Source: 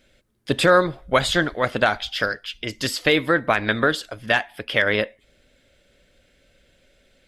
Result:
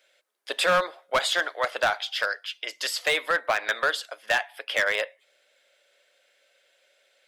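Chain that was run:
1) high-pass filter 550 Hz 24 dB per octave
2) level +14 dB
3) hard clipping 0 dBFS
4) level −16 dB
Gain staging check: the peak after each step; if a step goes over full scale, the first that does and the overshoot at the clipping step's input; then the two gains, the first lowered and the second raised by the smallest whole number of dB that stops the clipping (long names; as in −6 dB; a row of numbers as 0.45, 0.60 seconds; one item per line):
−4.5, +9.5, 0.0, −16.0 dBFS
step 2, 9.5 dB
step 2 +4 dB, step 4 −6 dB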